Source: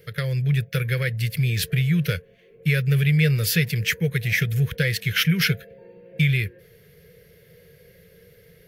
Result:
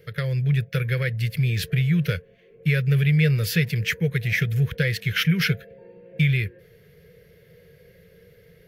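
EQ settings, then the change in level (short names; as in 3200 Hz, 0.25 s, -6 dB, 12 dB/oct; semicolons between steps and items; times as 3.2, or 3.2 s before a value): high shelf 4300 Hz -7 dB; bell 9000 Hz -2 dB 0.4 oct; 0.0 dB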